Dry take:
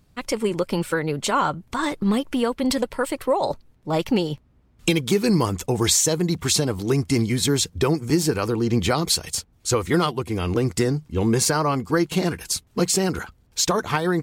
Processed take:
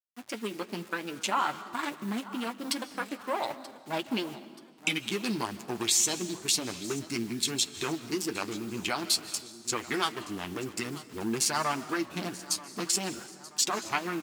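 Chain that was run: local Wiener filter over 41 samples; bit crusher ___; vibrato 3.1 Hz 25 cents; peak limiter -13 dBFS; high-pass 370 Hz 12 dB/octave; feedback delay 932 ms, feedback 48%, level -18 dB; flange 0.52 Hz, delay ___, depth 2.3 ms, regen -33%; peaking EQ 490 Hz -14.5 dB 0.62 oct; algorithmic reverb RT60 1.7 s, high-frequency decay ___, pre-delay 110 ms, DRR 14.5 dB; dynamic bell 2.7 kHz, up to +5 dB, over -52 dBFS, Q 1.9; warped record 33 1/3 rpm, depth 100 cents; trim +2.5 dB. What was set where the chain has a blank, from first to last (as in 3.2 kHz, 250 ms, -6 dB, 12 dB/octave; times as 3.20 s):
8-bit, 8 ms, 0.9×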